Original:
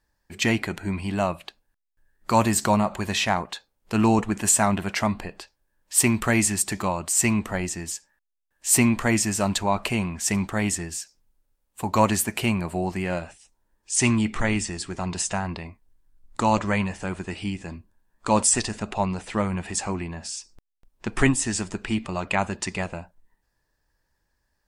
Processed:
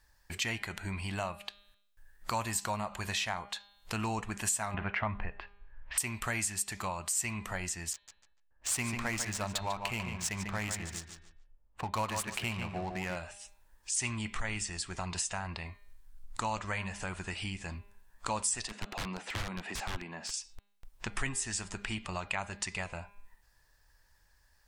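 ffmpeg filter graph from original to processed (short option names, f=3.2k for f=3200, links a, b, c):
-filter_complex "[0:a]asettb=1/sr,asplit=3[a][b][c];[a]atrim=end=4.744[d];[b]atrim=start=4.74:end=5.98,asetpts=PTS-STARTPTS,afade=t=in:d=0.004:c=qsin,afade=t=out:st=1.236:d=0.004:c=qsin,lowpass=f=2.4k:w=0.5412,lowpass=f=2.4k:w=1.3066,asubboost=boost=7.5:cutoff=130,acontrast=70[e];[c]atrim=start=5.976[f];[d][e]acrossfade=d=0.004:c1=hsin:c2=qsin[g];[g][f]acrossfade=d=0.004:c1=qsin:c2=hsin,asettb=1/sr,asplit=3[h][i][j];[h]atrim=end=7.934[k];[i]atrim=start=7.93:end=13.16,asetpts=PTS-STARTPTS,afade=t=in:d=0.004:c=qsin,afade=t=out:st=5.226:d=0.004:c=qsin,adynamicsmooth=sensitivity=7:basefreq=870,asplit=2[l][m];[m]adelay=146,lowpass=f=3.6k:p=1,volume=-7dB,asplit=2[n][o];[o]adelay=146,lowpass=f=3.6k:p=1,volume=0.21,asplit=2[p][q];[q]adelay=146,lowpass=f=3.6k:p=1,volume=0.21[r];[l][n][p][r]amix=inputs=4:normalize=0,atrim=end_sample=230643[s];[j]atrim=start=13.156[t];[k][s]acrossfade=d=0.004:c1=hsin:c2=qsin[u];[u][t]acrossfade=d=0.004:c1=qsin:c2=hsin,asettb=1/sr,asplit=3[v][w][x];[v]atrim=end=18.674[y];[w]atrim=start=18.67:end=20.34,asetpts=PTS-STARTPTS,afade=t=in:d=0.004:c=qsin,afade=t=out:st=1.666:d=0.004:c=qsin,highpass=f=220:w=0.5412,highpass=f=220:w=1.3066,aeval=exprs='(mod(15*val(0)+1,2)-1)/15':c=same,aemphasis=mode=reproduction:type=bsi[z];[x]atrim=start=20.336[aa];[y][z]acrossfade=d=0.004:c1=hsin:c2=qsin[ab];[ab][aa]acrossfade=d=0.004:c1=qsin:c2=hsin,equalizer=f=280:t=o:w=2.3:g=-12,bandreject=f=202.3:t=h:w=4,bandreject=f=404.6:t=h:w=4,bandreject=f=606.9:t=h:w=4,bandreject=f=809.2:t=h:w=4,bandreject=f=1.0115k:t=h:w=4,bandreject=f=1.2138k:t=h:w=4,bandreject=f=1.4161k:t=h:w=4,bandreject=f=1.6184k:t=h:w=4,bandreject=f=1.8207k:t=h:w=4,bandreject=f=2.023k:t=h:w=4,bandreject=f=2.2253k:t=h:w=4,bandreject=f=2.4276k:t=h:w=4,bandreject=f=2.6299k:t=h:w=4,bandreject=f=2.8322k:t=h:w=4,bandreject=f=3.0345k:t=h:w=4,bandreject=f=3.2368k:t=h:w=4,bandreject=f=3.4391k:t=h:w=4,bandreject=f=3.6414k:t=h:w=4,bandreject=f=3.8437k:t=h:w=4,bandreject=f=4.046k:t=h:w=4,bandreject=f=4.2483k:t=h:w=4,acompressor=threshold=-48dB:ratio=2.5,volume=8dB"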